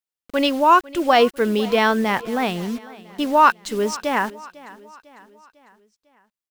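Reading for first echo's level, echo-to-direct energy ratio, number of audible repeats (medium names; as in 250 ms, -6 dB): -20.0 dB, -19.0 dB, 3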